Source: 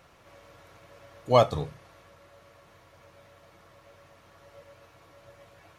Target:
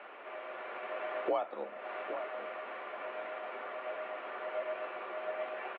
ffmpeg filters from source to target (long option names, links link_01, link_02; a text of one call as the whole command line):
ffmpeg -i in.wav -filter_complex "[0:a]highpass=frequency=270:width_type=q:width=0.5412,highpass=frequency=270:width_type=q:width=1.307,lowpass=frequency=2800:width_type=q:width=0.5176,lowpass=frequency=2800:width_type=q:width=0.7071,lowpass=frequency=2800:width_type=q:width=1.932,afreqshift=58,acompressor=threshold=-45dB:ratio=16,asplit=2[link_01][link_02];[link_02]adelay=816.3,volume=-9dB,highshelf=frequency=4000:gain=-18.4[link_03];[link_01][link_03]amix=inputs=2:normalize=0,dynaudnorm=framelen=130:gausssize=11:maxgain=5dB,volume=9.5dB" out.wav